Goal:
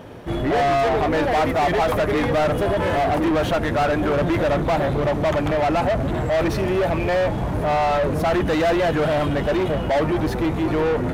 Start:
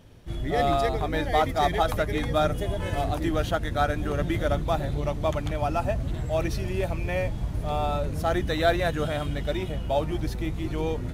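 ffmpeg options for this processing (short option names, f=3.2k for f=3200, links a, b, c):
-filter_complex "[0:a]equalizer=f=4.3k:t=o:w=3:g=-10.5,asplit=2[a][b];[b]highpass=f=720:p=1,volume=31dB,asoftclip=type=tanh:threshold=-12dB[c];[a][c]amix=inputs=2:normalize=0,lowpass=f=2.2k:p=1,volume=-6dB"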